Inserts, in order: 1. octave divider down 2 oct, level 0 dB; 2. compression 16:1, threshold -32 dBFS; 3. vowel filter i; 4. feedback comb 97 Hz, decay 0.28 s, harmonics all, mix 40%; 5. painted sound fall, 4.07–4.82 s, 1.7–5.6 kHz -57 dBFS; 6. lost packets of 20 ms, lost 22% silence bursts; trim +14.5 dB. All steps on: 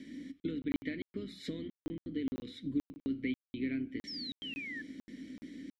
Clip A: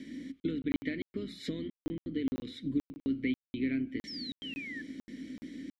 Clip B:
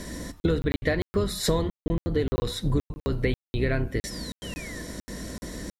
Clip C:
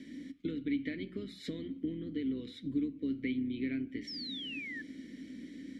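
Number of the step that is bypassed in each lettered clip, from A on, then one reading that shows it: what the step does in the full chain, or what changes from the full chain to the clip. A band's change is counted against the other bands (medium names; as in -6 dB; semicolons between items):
4, 4 kHz band -2.5 dB; 3, 125 Hz band +11.0 dB; 6, crest factor change -1.5 dB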